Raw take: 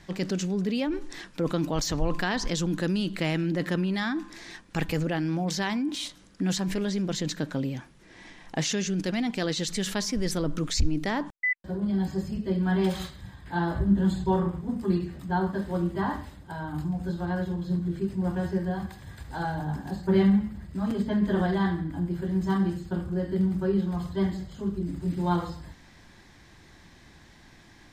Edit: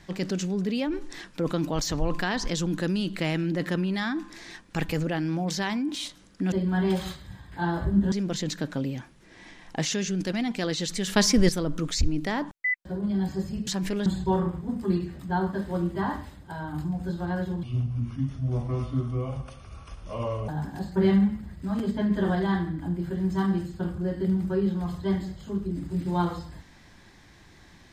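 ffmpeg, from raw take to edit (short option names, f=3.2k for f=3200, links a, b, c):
-filter_complex "[0:a]asplit=9[a][b][c][d][e][f][g][h][i];[a]atrim=end=6.522[j];[b]atrim=start=12.458:end=14.062[k];[c]atrim=start=6.908:end=9.952[l];[d]atrim=start=9.948:end=10.282,asetpts=PTS-STARTPTS,volume=8.5dB[m];[e]atrim=start=10.278:end=12.462[n];[f]atrim=start=6.518:end=6.912[o];[g]atrim=start=14.058:end=17.634[p];[h]atrim=start=17.63:end=19.6,asetpts=PTS-STARTPTS,asetrate=30429,aresample=44100[q];[i]atrim=start=19.596[r];[j][k]acrossfade=d=0.004:c1=hsin:c2=hsin[s];[s][l]acrossfade=d=0.004:c1=hsin:c2=hsin[t];[t][m]acrossfade=d=0.004:c1=hsin:c2=hsin[u];[u][n]acrossfade=d=0.004:c1=hsin:c2=hsin[v];[v][o]acrossfade=d=0.004:c1=hsin:c2=hsin[w];[w][p]acrossfade=d=0.004:c1=hsin:c2=hsin[x];[x][q]acrossfade=d=0.004:c1=hsin:c2=hsin[y];[y][r]acrossfade=d=0.004:c1=hsin:c2=hsin"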